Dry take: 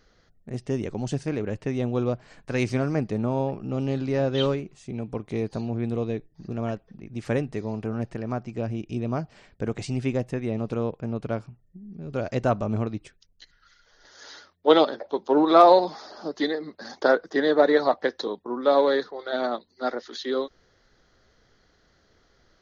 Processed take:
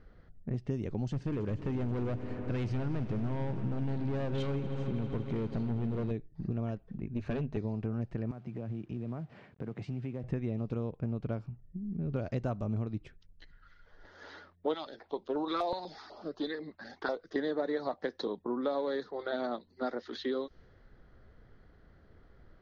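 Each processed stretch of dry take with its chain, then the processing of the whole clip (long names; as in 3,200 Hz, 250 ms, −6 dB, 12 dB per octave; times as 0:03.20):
0:01.08–0:06.11: hard clipping −27 dBFS + echo that builds up and dies away 80 ms, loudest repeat 5, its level −18 dB
0:07.06–0:07.57: EQ curve with evenly spaced ripples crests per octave 1.5, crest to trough 8 dB + tube saturation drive 26 dB, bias 0.65
0:08.31–0:10.24: high-pass filter 110 Hz 24 dB per octave + downward compressor 3 to 1, threshold −42 dBFS + log-companded quantiser 6 bits
0:14.74–0:17.36: parametric band 200 Hz −10.5 dB 2.6 octaves + notch on a step sequencer 8.1 Hz 460–2,000 Hz
whole clip: low-pass that shuts in the quiet parts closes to 2,100 Hz, open at −17.5 dBFS; low-shelf EQ 250 Hz +10.5 dB; downward compressor 5 to 1, threshold −29 dBFS; level −2 dB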